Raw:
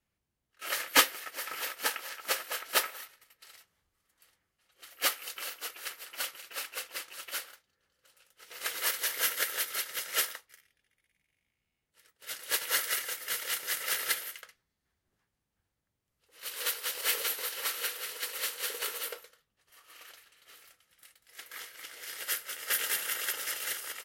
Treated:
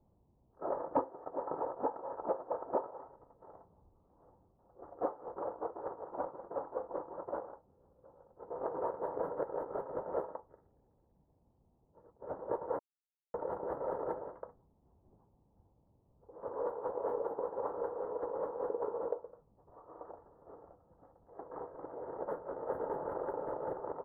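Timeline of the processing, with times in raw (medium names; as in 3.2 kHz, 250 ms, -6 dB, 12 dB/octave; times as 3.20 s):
12.79–13.34 s: mute
whole clip: local Wiener filter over 9 samples; elliptic low-pass 940 Hz, stop band 60 dB; compression 3:1, threshold -51 dBFS; trim +16.5 dB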